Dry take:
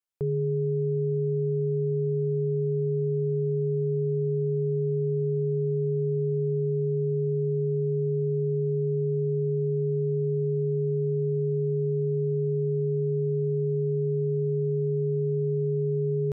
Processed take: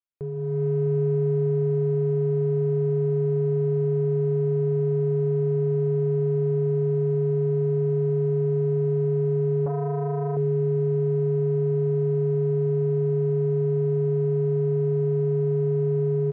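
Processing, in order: reverb removal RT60 0.97 s; AGC gain up to 13 dB; in parallel at -11 dB: hard clip -25.5 dBFS, distortion -6 dB; on the sum: air absorption 160 m; echo 0.659 s -11.5 dB; on a send at -12 dB: reverb RT60 3.5 s, pre-delay 0.103 s; 9.66–10.37 on the sum: core saturation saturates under 350 Hz; gain -7 dB

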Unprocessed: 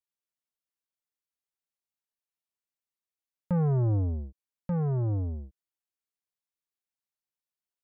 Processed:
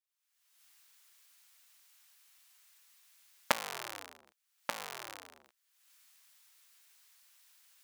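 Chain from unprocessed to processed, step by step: cycle switcher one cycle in 3, inverted; recorder AGC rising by 47 dB/s; HPF 1300 Hz 12 dB/oct; gain -1 dB

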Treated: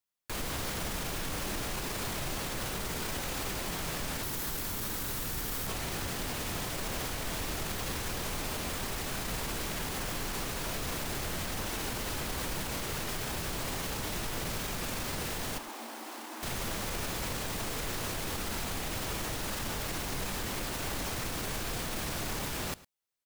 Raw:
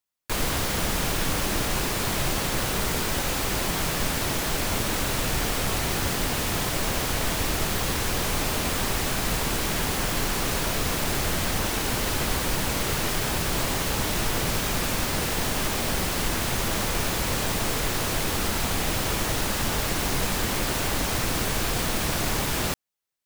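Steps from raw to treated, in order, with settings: 4.23–5.67 fifteen-band EQ 630 Hz -5 dB, 2500 Hz -3 dB, 16000 Hz +10 dB; limiter -22.5 dBFS, peak gain reduction 10 dB; 15.58–16.43 rippled Chebyshev high-pass 220 Hz, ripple 9 dB; echo 0.107 s -19.5 dB; gain -3.5 dB

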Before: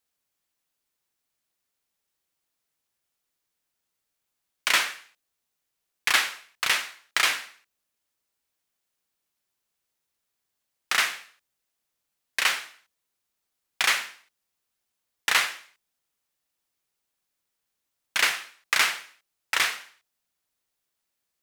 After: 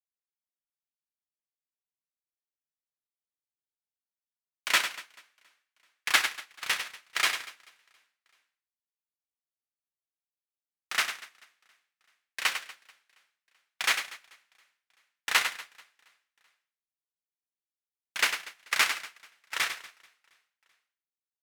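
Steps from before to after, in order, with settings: reverse bouncing-ball echo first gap 0.1 s, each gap 1.4×, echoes 5; upward expander 2.5:1, over -35 dBFS

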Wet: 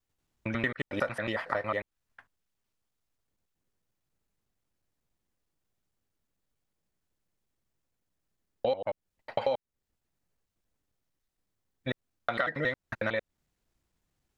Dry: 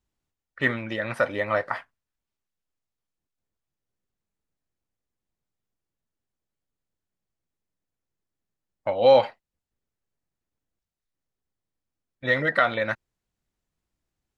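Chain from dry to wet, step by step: slices in reverse order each 91 ms, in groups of 5; compressor 5:1, threshold -32 dBFS, peak gain reduction 17.5 dB; gain +4 dB

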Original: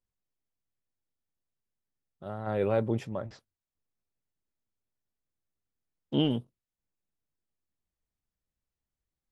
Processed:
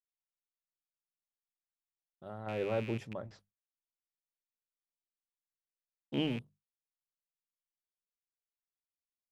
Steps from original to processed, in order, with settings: rattling part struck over -33 dBFS, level -28 dBFS; notches 50/100/150/200 Hz; gate with hold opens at -59 dBFS; gain -6.5 dB

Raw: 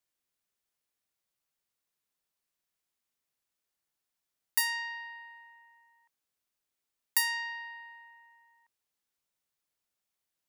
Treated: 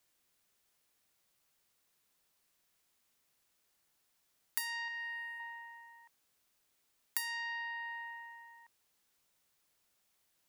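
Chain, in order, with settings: 4.88–5.4 fifteen-band EQ 1000 Hz -10 dB, 4000 Hz -9 dB, 10000 Hz +8 dB; compressor 4:1, threshold -48 dBFS, peak gain reduction 21 dB; gain +9.5 dB

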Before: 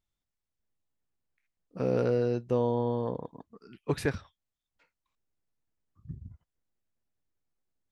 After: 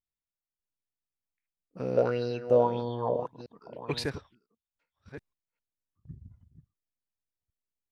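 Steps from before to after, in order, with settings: reverse delay 0.577 s, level -11 dB; gate -56 dBFS, range -9 dB; 1.97–4.04 LFO bell 1.7 Hz 570–4600 Hz +17 dB; gain -4 dB

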